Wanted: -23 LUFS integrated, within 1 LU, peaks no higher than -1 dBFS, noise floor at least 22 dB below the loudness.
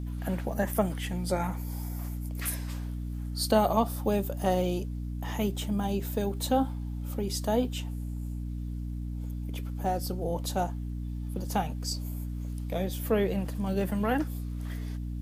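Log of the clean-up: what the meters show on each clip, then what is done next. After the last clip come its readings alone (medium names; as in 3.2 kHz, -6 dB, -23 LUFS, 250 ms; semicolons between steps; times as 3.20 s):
tick rate 23 per s; hum 60 Hz; highest harmonic 300 Hz; hum level -32 dBFS; loudness -31.5 LUFS; peak level -11.0 dBFS; loudness target -23.0 LUFS
-> de-click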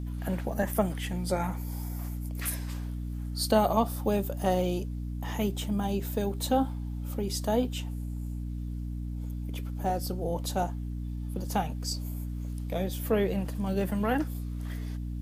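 tick rate 0 per s; hum 60 Hz; highest harmonic 300 Hz; hum level -32 dBFS
-> de-hum 60 Hz, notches 5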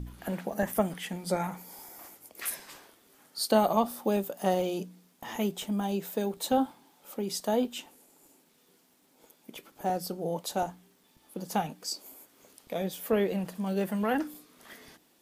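hum not found; loudness -31.5 LUFS; peak level -11.5 dBFS; loudness target -23.0 LUFS
-> trim +8.5 dB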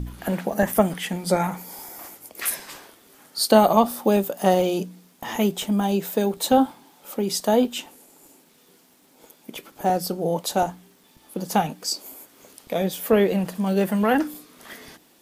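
loudness -23.0 LUFS; peak level -3.0 dBFS; noise floor -57 dBFS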